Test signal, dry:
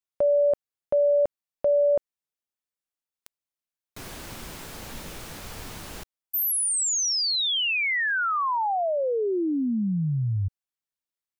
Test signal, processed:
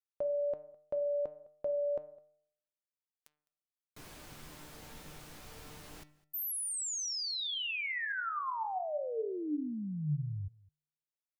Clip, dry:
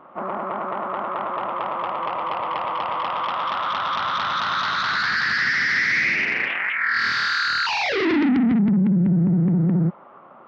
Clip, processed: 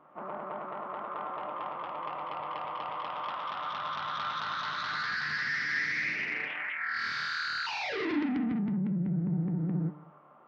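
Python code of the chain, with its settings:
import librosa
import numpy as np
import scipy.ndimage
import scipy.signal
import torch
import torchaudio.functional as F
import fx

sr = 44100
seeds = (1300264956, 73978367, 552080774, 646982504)

p1 = fx.comb_fb(x, sr, f0_hz=150.0, decay_s=0.72, harmonics='all', damping=0.4, mix_pct=80)
y = p1 + fx.echo_single(p1, sr, ms=208, db=-23.5, dry=0)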